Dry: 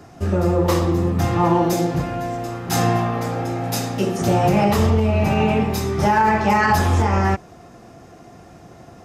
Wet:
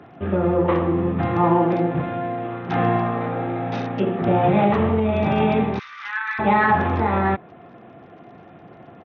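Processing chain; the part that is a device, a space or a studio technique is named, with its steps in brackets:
0:05.79–0:06.39: Butterworth high-pass 1,200 Hz 48 dB per octave
dynamic equaliser 3,100 Hz, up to −5 dB, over −44 dBFS, Q 2.4
Bluetooth headset (high-pass filter 130 Hz 12 dB per octave; downsampling to 8,000 Hz; SBC 64 kbit/s 48,000 Hz)

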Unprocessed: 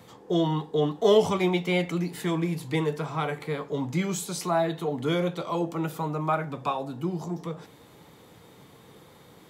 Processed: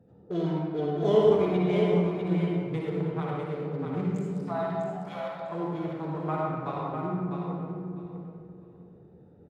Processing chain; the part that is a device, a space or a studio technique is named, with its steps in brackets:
adaptive Wiener filter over 41 samples
high-shelf EQ 2,700 Hz −8.5 dB
0:04.31–0:05.50: Butterworth high-pass 570 Hz 72 dB per octave
repeating echo 650 ms, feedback 20%, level −6 dB
stairwell (convolution reverb RT60 1.7 s, pre-delay 50 ms, DRR −3 dB)
level −6 dB

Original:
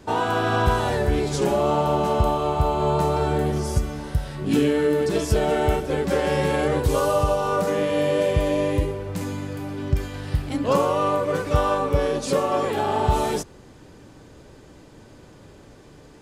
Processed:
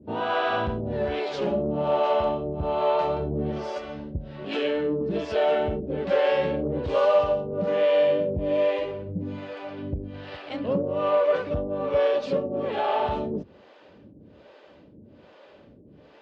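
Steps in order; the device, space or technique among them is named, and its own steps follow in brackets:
guitar amplifier with harmonic tremolo (two-band tremolo in antiphase 1.2 Hz, depth 100%, crossover 410 Hz; soft clipping −17.5 dBFS, distortion −16 dB; loudspeaker in its box 81–4,100 Hz, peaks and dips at 130 Hz −6 dB, 210 Hz +5 dB, 580 Hz +8 dB, 2,800 Hz +4 dB)

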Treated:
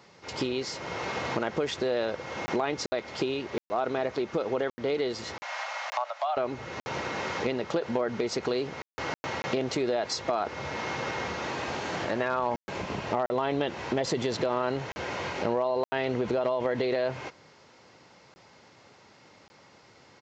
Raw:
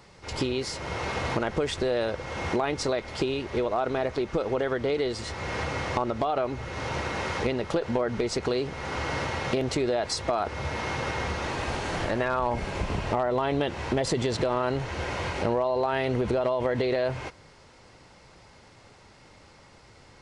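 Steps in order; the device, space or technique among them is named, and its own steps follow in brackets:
call with lost packets (high-pass filter 150 Hz 12 dB per octave; downsampling to 16,000 Hz; dropped packets of 20 ms bursts)
0:05.42–0:06.37: Butterworth high-pass 590 Hz 72 dB per octave
level −1.5 dB

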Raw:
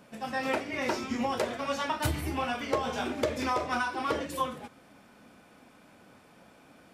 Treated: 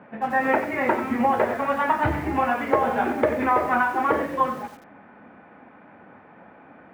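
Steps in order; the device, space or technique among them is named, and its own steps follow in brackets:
bass cabinet (loudspeaker in its box 65–2,100 Hz, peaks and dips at 80 Hz −5 dB, 130 Hz −5 dB, 840 Hz +5 dB, 1,800 Hz +4 dB)
feedback echo at a low word length 91 ms, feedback 35%, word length 8 bits, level −10.5 dB
level +7.5 dB

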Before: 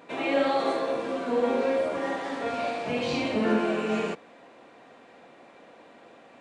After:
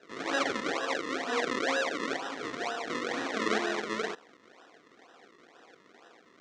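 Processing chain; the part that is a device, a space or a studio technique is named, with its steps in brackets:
0:00.85–0:02.17: comb filter 7 ms, depth 62%
circuit-bent sampling toy (sample-and-hold swept by an LFO 39×, swing 100% 2.1 Hz; loudspeaker in its box 430–6,000 Hz, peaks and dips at 570 Hz −8 dB, 870 Hz −4 dB, 1,900 Hz +4 dB, 2,700 Hz −5 dB, 4,800 Hz −5 dB)

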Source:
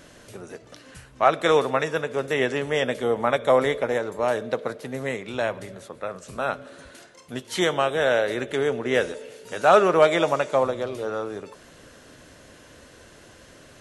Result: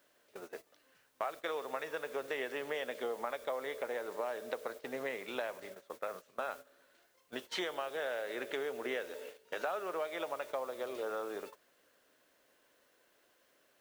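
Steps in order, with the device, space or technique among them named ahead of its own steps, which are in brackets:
baby monitor (band-pass filter 390–4,300 Hz; downward compressor 12 to 1, threshold −30 dBFS, peak gain reduction 19 dB; white noise bed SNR 19 dB; noise gate −42 dBFS, range −16 dB)
level −4 dB

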